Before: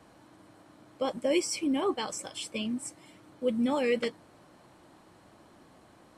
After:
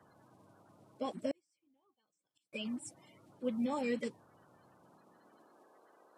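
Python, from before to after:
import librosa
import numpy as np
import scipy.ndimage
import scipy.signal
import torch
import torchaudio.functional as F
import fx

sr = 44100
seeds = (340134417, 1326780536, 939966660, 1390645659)

y = fx.spec_quant(x, sr, step_db=30)
y = fx.filter_sweep_highpass(y, sr, from_hz=110.0, to_hz=400.0, start_s=4.63, end_s=5.73, q=1.5)
y = fx.gate_flip(y, sr, shuts_db=-31.0, range_db=-40, at=(1.31, 2.53))
y = y * 10.0 ** (-7.5 / 20.0)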